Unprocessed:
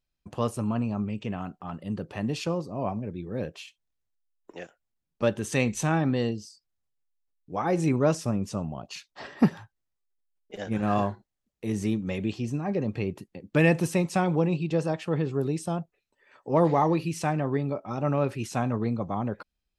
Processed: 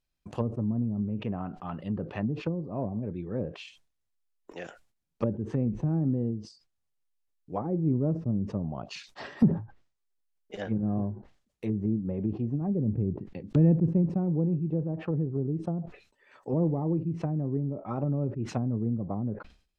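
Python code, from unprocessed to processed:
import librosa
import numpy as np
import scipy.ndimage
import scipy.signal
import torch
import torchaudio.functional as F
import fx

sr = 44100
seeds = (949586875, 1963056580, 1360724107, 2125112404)

y = fx.low_shelf(x, sr, hz=220.0, db=5.0, at=(12.61, 14.1))
y = fx.env_lowpass_down(y, sr, base_hz=310.0, full_db=-24.5)
y = fx.sustainer(y, sr, db_per_s=130.0)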